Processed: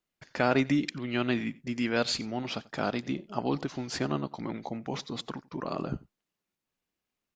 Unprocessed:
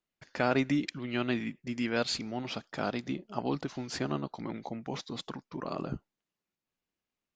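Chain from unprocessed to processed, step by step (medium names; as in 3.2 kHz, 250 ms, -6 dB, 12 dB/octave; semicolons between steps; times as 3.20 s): delay 90 ms -22 dB; trim +2.5 dB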